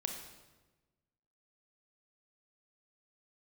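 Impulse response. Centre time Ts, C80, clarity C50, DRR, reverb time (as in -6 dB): 34 ms, 7.0 dB, 5.0 dB, 3.0 dB, 1.2 s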